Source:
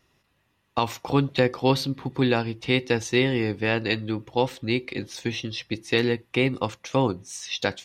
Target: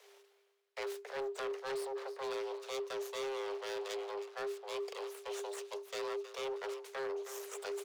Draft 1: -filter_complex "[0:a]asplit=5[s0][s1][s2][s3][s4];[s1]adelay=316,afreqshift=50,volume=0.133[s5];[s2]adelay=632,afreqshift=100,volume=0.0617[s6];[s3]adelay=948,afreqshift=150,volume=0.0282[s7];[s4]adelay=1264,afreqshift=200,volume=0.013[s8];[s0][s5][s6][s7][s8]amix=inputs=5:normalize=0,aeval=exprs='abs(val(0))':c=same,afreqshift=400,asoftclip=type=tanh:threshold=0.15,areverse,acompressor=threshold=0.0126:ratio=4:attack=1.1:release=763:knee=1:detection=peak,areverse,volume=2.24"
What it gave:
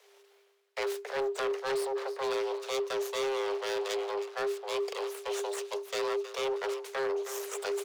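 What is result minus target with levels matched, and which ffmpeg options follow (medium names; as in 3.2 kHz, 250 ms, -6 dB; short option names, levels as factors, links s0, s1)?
compression: peak gain reduction -7.5 dB
-filter_complex "[0:a]asplit=5[s0][s1][s2][s3][s4];[s1]adelay=316,afreqshift=50,volume=0.133[s5];[s2]adelay=632,afreqshift=100,volume=0.0617[s6];[s3]adelay=948,afreqshift=150,volume=0.0282[s7];[s4]adelay=1264,afreqshift=200,volume=0.013[s8];[s0][s5][s6][s7][s8]amix=inputs=5:normalize=0,aeval=exprs='abs(val(0))':c=same,afreqshift=400,asoftclip=type=tanh:threshold=0.15,areverse,acompressor=threshold=0.00398:ratio=4:attack=1.1:release=763:knee=1:detection=peak,areverse,volume=2.24"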